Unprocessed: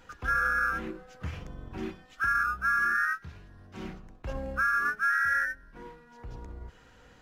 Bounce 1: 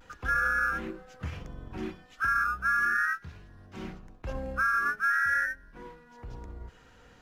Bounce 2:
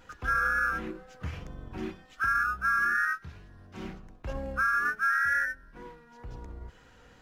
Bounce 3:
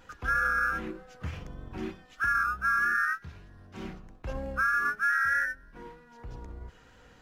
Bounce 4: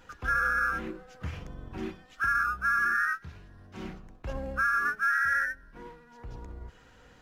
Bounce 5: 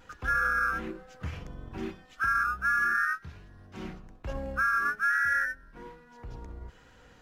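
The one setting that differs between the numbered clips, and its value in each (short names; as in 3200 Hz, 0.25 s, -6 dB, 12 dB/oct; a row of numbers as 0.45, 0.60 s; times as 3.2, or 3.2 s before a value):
vibrato, rate: 0.39, 2.1, 3.2, 14, 1.2 Hz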